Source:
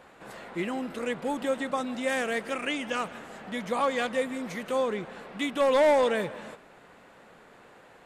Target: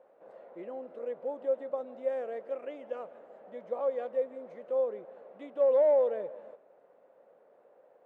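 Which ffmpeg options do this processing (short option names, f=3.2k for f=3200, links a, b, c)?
-af "bandpass=f=550:t=q:w=4.3:csg=0"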